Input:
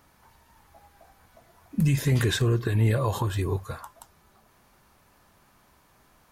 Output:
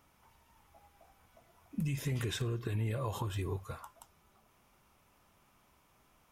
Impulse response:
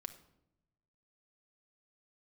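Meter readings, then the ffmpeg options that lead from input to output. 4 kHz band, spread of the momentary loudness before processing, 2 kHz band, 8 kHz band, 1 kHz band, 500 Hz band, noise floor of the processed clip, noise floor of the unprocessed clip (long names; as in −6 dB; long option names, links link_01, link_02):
−10.0 dB, 11 LU, −12.0 dB, −10.0 dB, −9.5 dB, −11.0 dB, −69 dBFS, −62 dBFS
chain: -filter_complex "[0:a]acompressor=threshold=-24dB:ratio=5,asplit=2[link_01][link_02];[link_02]asuperpass=centerf=2700:order=12:qfactor=0.74[link_03];[1:a]atrim=start_sample=2205[link_04];[link_03][link_04]afir=irnorm=-1:irlink=0,volume=-2.5dB[link_05];[link_01][link_05]amix=inputs=2:normalize=0,volume=-7.5dB"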